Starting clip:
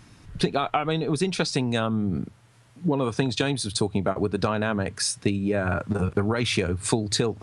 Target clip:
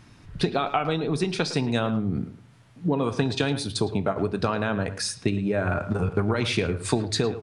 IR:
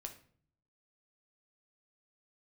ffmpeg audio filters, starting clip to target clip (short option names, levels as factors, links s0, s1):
-filter_complex "[0:a]asplit=2[s0][s1];[s1]adelay=110,highpass=300,lowpass=3400,asoftclip=type=hard:threshold=0.168,volume=0.251[s2];[s0][s2]amix=inputs=2:normalize=0,asplit=2[s3][s4];[1:a]atrim=start_sample=2205,lowpass=6400[s5];[s4][s5]afir=irnorm=-1:irlink=0,volume=1.06[s6];[s3][s6]amix=inputs=2:normalize=0,volume=0.596"